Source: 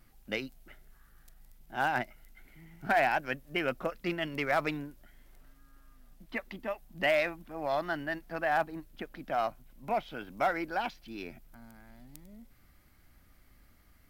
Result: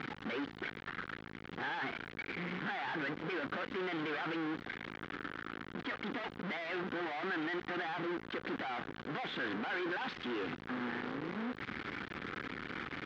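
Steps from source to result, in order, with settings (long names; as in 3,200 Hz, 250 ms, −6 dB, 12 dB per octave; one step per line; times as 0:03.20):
sign of each sample alone
speed change +8%
loudspeaker in its box 220–3,100 Hz, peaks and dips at 630 Hz −10 dB, 900 Hz −4 dB, 1,500 Hz +3 dB, 2,600 Hz −5 dB
level +1 dB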